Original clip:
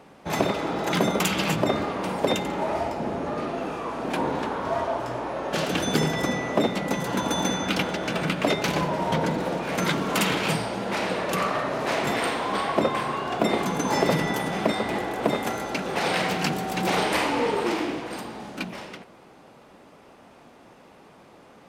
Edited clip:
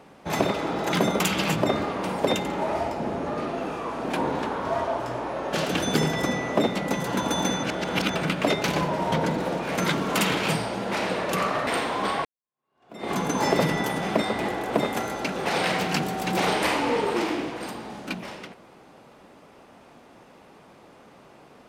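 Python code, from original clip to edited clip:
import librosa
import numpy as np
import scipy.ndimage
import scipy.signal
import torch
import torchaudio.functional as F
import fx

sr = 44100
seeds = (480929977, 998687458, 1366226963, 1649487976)

y = fx.edit(x, sr, fx.reverse_span(start_s=7.63, length_s=0.52),
    fx.cut(start_s=11.67, length_s=0.5),
    fx.fade_in_span(start_s=12.75, length_s=0.87, curve='exp'), tone=tone)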